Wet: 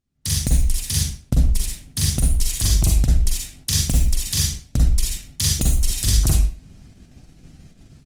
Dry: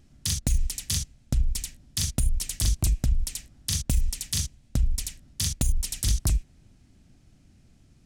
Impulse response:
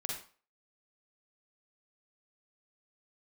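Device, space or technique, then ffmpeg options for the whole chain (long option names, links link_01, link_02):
speakerphone in a meeting room: -filter_complex "[0:a]asettb=1/sr,asplit=3[link_01][link_02][link_03];[link_01]atrim=end=0.974[link_04];[link_02]atrim=start=0.97:end=2.14,asetpts=PTS-STARTPTS,afade=type=in:duration=0.004:curve=qsin,afade=type=out:start_time=1.166:duration=0.004:curve=qsin,equalizer=frequency=310:width=0.34:gain=4[link_05];[link_03]atrim=start=2.136[link_06];[link_04][link_05]acrossfade=duration=0.004:curve1=hsin:curve2=qsin[link_07];[link_07][link_06]acrossfade=duration=0.004:curve1=qsin:curve2=hsin[link_08];[1:a]atrim=start_sample=2205[link_09];[link_08][link_09]afir=irnorm=-1:irlink=0,asplit=2[link_10][link_11];[link_11]adelay=120,highpass=300,lowpass=3400,asoftclip=type=hard:threshold=-20.5dB,volume=-18dB[link_12];[link_10][link_12]amix=inputs=2:normalize=0,dynaudnorm=framelen=140:gausssize=3:maxgain=16dB,agate=range=-17dB:threshold=-39dB:ratio=16:detection=peak,volume=-4.5dB" -ar 48000 -c:a libopus -b:a 24k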